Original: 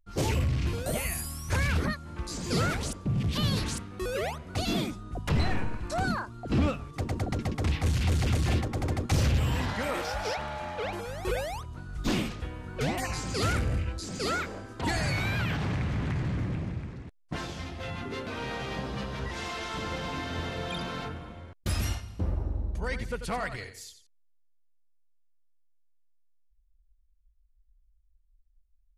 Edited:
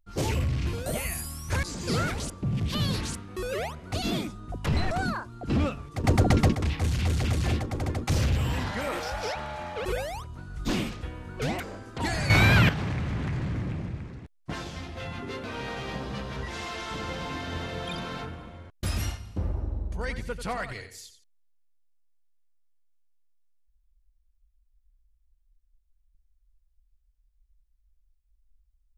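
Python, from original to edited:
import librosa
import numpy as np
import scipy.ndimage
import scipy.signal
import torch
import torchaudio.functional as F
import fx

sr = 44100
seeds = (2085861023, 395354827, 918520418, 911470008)

y = fx.edit(x, sr, fx.cut(start_s=1.63, length_s=0.63),
    fx.cut(start_s=5.54, length_s=0.39),
    fx.clip_gain(start_s=7.06, length_s=0.51, db=10.0),
    fx.cut(start_s=10.87, length_s=0.37),
    fx.cut(start_s=12.99, length_s=1.44),
    fx.clip_gain(start_s=15.13, length_s=0.39, db=10.5), tone=tone)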